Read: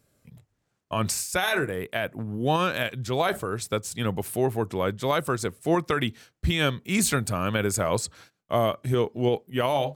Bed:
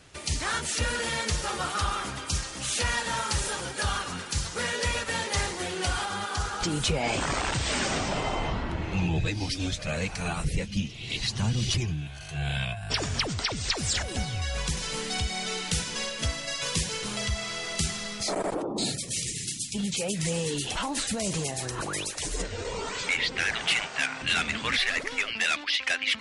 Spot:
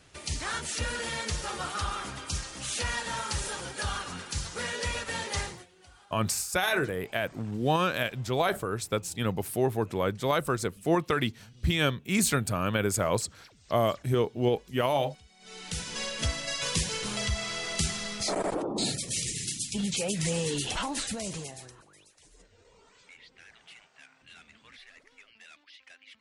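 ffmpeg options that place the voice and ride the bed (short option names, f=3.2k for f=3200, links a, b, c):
-filter_complex "[0:a]adelay=5200,volume=-2dB[a];[1:a]volume=23dB,afade=t=out:st=5.38:d=0.28:silence=0.0668344,afade=t=in:st=15.39:d=0.79:silence=0.0446684,afade=t=out:st=20.7:d=1.13:silence=0.0501187[b];[a][b]amix=inputs=2:normalize=0"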